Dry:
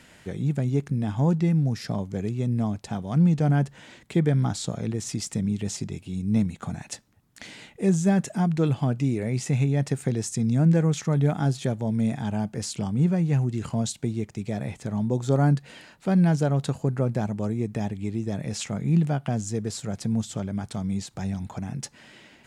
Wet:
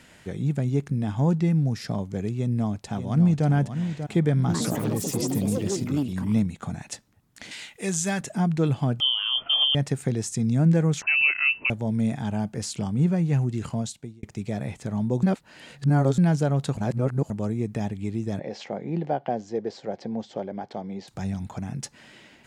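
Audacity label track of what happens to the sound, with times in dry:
2.370000	3.470000	echo throw 590 ms, feedback 40%, level -9 dB
4.370000	6.910000	ever faster or slower copies 117 ms, each echo +5 st, echoes 3
7.510000	8.210000	tilt shelf lows -9 dB, about 920 Hz
9.000000	9.750000	frequency inversion carrier 3.3 kHz
11.020000	11.700000	frequency inversion carrier 2.8 kHz
13.660000	14.230000	fade out
15.230000	16.180000	reverse
16.770000	17.300000	reverse
18.390000	21.080000	cabinet simulation 280–4300 Hz, peaks and dips at 370 Hz +5 dB, 530 Hz +8 dB, 780 Hz +8 dB, 1.3 kHz -8 dB, 2.6 kHz -6 dB, 3.7 kHz -6 dB

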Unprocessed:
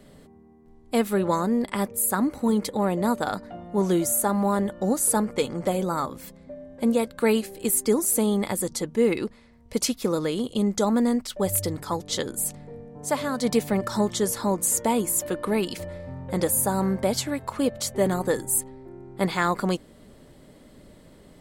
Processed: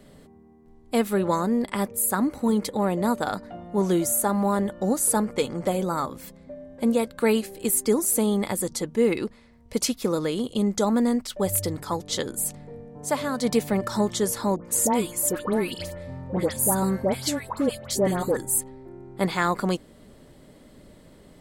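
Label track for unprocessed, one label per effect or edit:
14.560000	18.370000	phase dispersion highs, late by 97 ms, half as late at 1.5 kHz

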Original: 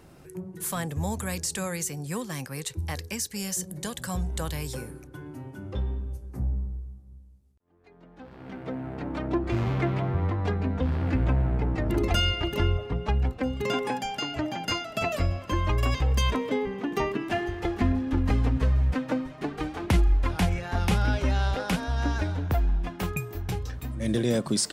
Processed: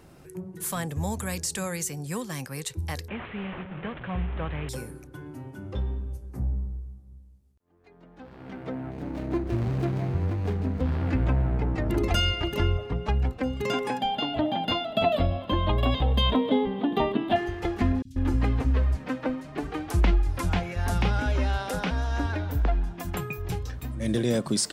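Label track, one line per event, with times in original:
3.080000	4.690000	one-bit delta coder 16 kbps, step -35 dBFS
8.910000	10.820000	median filter over 41 samples
14.010000	17.360000	FFT filter 140 Hz 0 dB, 240 Hz +8 dB, 370 Hz 0 dB, 700 Hz +8 dB, 1.4 kHz -3 dB, 2.5 kHz -4 dB, 3.5 kHz +11 dB, 5.7 kHz -20 dB, 14 kHz -7 dB
18.020000	23.500000	three bands offset in time highs, lows, mids 30/140 ms, splits 160/4800 Hz

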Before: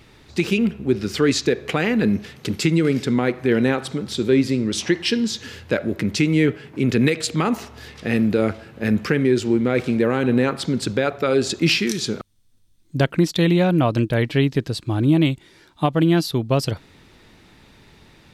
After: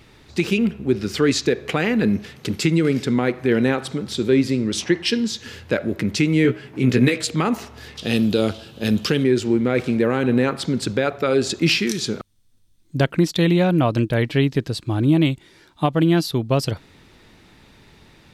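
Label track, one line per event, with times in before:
4.840000	5.460000	three bands expanded up and down depth 40%
6.430000	7.240000	doubling 16 ms -5 dB
7.970000	9.240000	resonant high shelf 2.6 kHz +7 dB, Q 3

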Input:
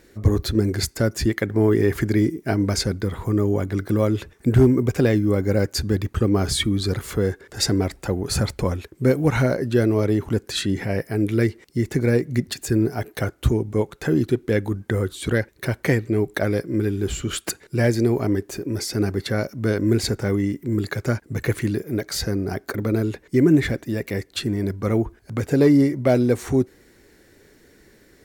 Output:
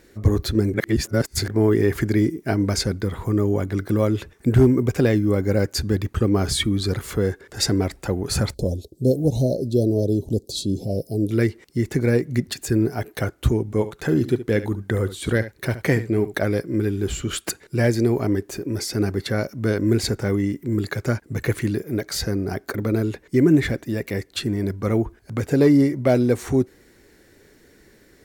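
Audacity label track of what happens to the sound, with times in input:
0.740000	1.480000	reverse
8.540000	11.310000	Chebyshev band-stop 630–4000 Hz, order 3
13.650000	16.370000	delay 71 ms -13.5 dB

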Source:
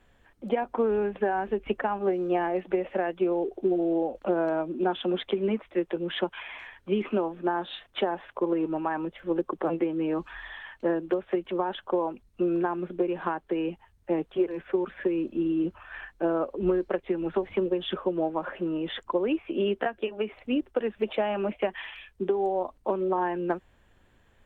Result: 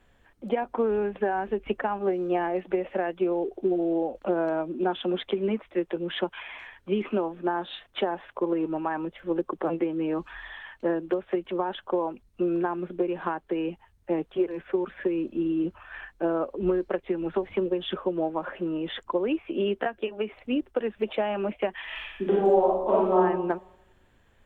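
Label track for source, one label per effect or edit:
21.840000	23.170000	reverb throw, RT60 0.89 s, DRR -6 dB

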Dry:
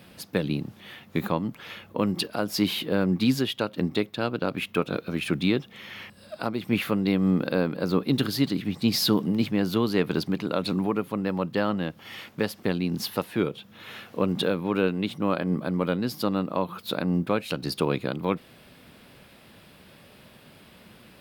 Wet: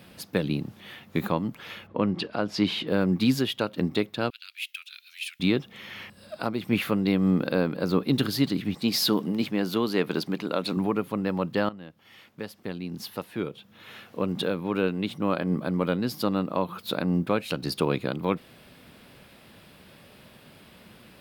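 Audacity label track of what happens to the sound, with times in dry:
1.860000	2.860000	low-pass 2.7 kHz -> 5.9 kHz
4.300000	5.400000	inverse Chebyshev high-pass stop band from 710 Hz, stop band 60 dB
8.740000	10.770000	peaking EQ 78 Hz -13.5 dB 1.5 oct
11.690000	15.630000	fade in, from -15.5 dB

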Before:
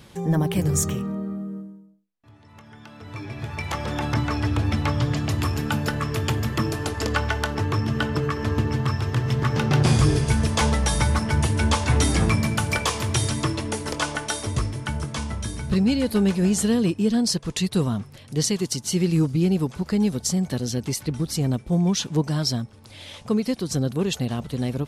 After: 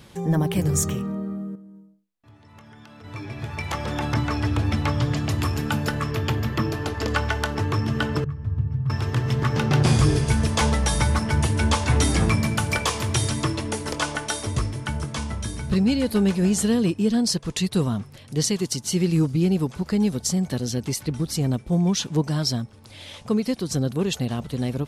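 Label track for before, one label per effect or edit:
1.550000	3.040000	compression 10:1, threshold -41 dBFS
6.110000	7.080000	peaking EQ 9 kHz -10 dB 0.91 oct
8.240000	8.900000	FFT filter 150 Hz 0 dB, 260 Hz -20 dB, 1.2 kHz -20 dB, 6.3 kHz -29 dB

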